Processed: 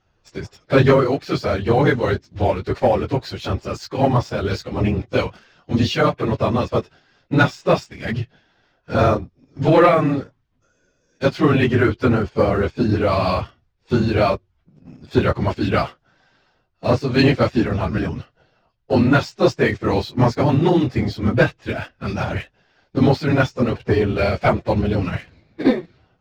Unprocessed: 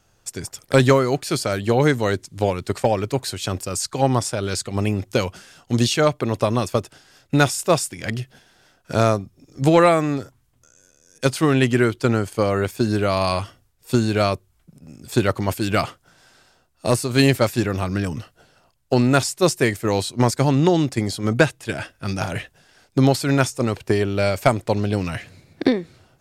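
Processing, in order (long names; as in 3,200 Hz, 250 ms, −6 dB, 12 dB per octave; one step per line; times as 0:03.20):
random phases in long frames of 50 ms
Bessel low-pass filter 3,400 Hz, order 8
leveller curve on the samples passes 1
level −1.5 dB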